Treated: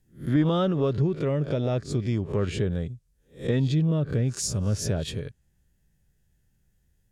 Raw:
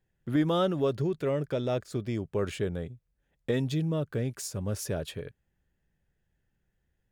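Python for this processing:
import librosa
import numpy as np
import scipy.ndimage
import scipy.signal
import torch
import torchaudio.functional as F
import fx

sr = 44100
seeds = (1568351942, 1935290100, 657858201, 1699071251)

y = fx.spec_swells(x, sr, rise_s=0.31)
y = fx.env_lowpass_down(y, sr, base_hz=2700.0, full_db=-25.5)
y = fx.bass_treble(y, sr, bass_db=8, treble_db=13)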